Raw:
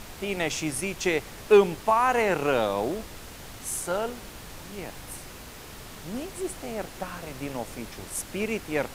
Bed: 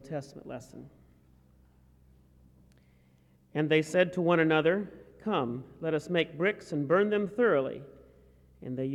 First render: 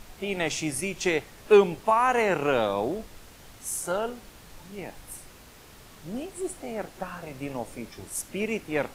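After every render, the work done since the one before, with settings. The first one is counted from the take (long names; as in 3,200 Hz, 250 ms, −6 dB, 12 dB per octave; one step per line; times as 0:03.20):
noise reduction from a noise print 7 dB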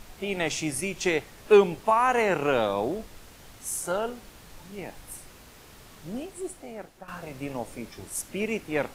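0:06.08–0:07.08: fade out, to −12 dB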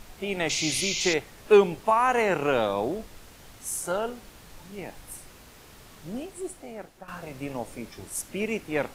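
0:00.49–0:01.14: sound drawn into the spectrogram noise 2,000–7,200 Hz −30 dBFS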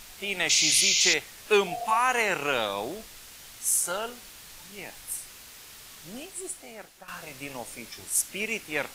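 tilt shelving filter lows −8 dB, about 1,300 Hz
0:01.70–0:01.95: healed spectral selection 350–750 Hz after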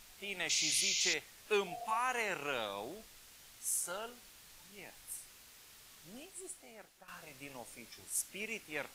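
level −11 dB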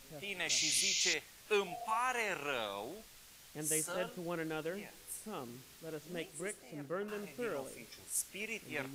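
mix in bed −15 dB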